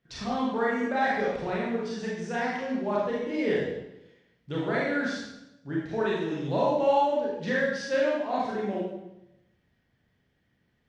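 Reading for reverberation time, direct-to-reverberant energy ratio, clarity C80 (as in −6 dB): 0.90 s, −6.0 dB, 3.5 dB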